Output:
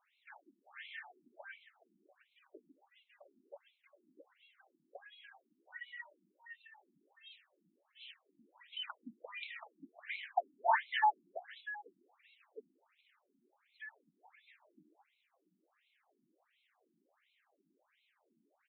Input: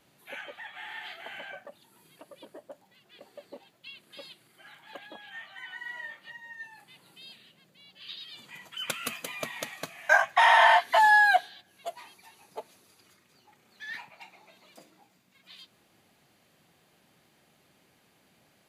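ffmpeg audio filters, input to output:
-filter_complex "[0:a]asplit=2[s0][s1];[s1]aecho=0:1:557:0.15[s2];[s0][s2]amix=inputs=2:normalize=0,afftfilt=real='re*between(b*sr/1024,240*pow(3000/240,0.5+0.5*sin(2*PI*1.4*pts/sr))/1.41,240*pow(3000/240,0.5+0.5*sin(2*PI*1.4*pts/sr))*1.41)':imag='im*between(b*sr/1024,240*pow(3000/240,0.5+0.5*sin(2*PI*1.4*pts/sr))/1.41,240*pow(3000/240,0.5+0.5*sin(2*PI*1.4*pts/sr))*1.41)':win_size=1024:overlap=0.75,volume=0.562"

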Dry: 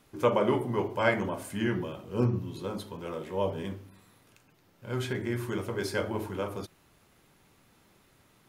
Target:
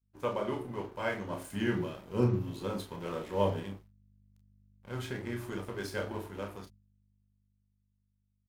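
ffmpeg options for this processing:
-filter_complex "[0:a]asettb=1/sr,asplit=3[s0][s1][s2];[s0]atrim=end=1.304[s3];[s1]atrim=start=1.3:end=3.6,asetpts=PTS-STARTPTS,afade=t=in:d=0.004:c=qsin,afade=t=out:st=2.296:d=0.004:c=qsin,acontrast=29[s4];[s2]atrim=start=3.596[s5];[s3][s4]acrossfade=d=0.004:c1=hsin:c2=qsin[s6];[s6][s5]acrossfade=d=0.004:c1=qsin:c2=hsin,aeval=exprs='sgn(val(0))*max(abs(val(0))-0.00631,0)':c=same,aeval=exprs='val(0)+0.00224*(sin(2*PI*50*n/s)+sin(2*PI*2*50*n/s)/2+sin(2*PI*3*50*n/s)/3+sin(2*PI*4*50*n/s)/4+sin(2*PI*5*50*n/s)/5)':c=same,dynaudnorm=f=320:g=13:m=1.58,agate=range=0.0224:threshold=0.00562:ratio=3:detection=peak,aecho=1:1:30|41:0.473|0.251,volume=0.376"

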